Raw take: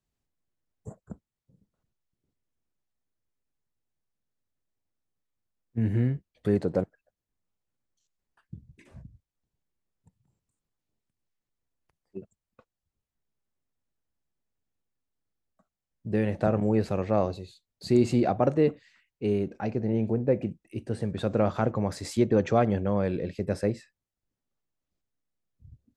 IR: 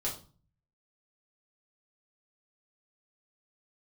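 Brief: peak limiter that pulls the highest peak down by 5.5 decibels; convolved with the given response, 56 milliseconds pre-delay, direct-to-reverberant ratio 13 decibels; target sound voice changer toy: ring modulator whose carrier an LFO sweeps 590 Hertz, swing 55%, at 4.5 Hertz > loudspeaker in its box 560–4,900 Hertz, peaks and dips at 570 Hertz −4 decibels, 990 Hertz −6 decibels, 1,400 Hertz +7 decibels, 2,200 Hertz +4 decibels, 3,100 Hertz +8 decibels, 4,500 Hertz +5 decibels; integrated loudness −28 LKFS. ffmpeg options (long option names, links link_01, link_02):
-filter_complex "[0:a]alimiter=limit=-15dB:level=0:latency=1,asplit=2[link_01][link_02];[1:a]atrim=start_sample=2205,adelay=56[link_03];[link_02][link_03]afir=irnorm=-1:irlink=0,volume=-16.5dB[link_04];[link_01][link_04]amix=inputs=2:normalize=0,aeval=exprs='val(0)*sin(2*PI*590*n/s+590*0.55/4.5*sin(2*PI*4.5*n/s))':channel_layout=same,highpass=560,equalizer=frequency=570:width_type=q:width=4:gain=-4,equalizer=frequency=990:width_type=q:width=4:gain=-6,equalizer=frequency=1400:width_type=q:width=4:gain=7,equalizer=frequency=2200:width_type=q:width=4:gain=4,equalizer=frequency=3100:width_type=q:width=4:gain=8,equalizer=frequency=4500:width_type=q:width=4:gain=5,lowpass=frequency=4900:width=0.5412,lowpass=frequency=4900:width=1.3066,volume=5.5dB"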